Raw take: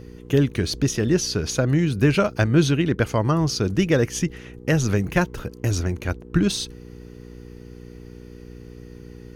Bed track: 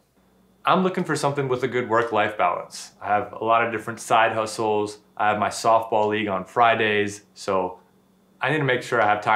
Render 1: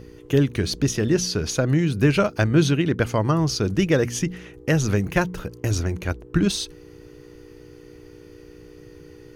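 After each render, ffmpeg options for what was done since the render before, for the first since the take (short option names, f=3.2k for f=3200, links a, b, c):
-af "bandreject=f=60:t=h:w=4,bandreject=f=120:t=h:w=4,bandreject=f=180:t=h:w=4,bandreject=f=240:t=h:w=4"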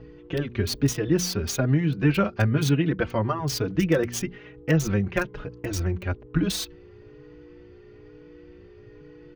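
-filter_complex "[0:a]acrossover=split=750|4000[a][b][c];[c]acrusher=bits=4:mix=0:aa=0.000001[d];[a][b][d]amix=inputs=3:normalize=0,asplit=2[e][f];[f]adelay=4.3,afreqshift=1.1[g];[e][g]amix=inputs=2:normalize=1"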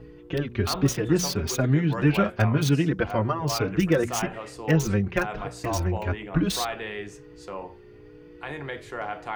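-filter_complex "[1:a]volume=-13.5dB[a];[0:a][a]amix=inputs=2:normalize=0"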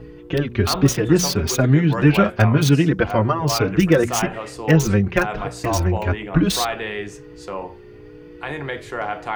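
-af "volume=6.5dB"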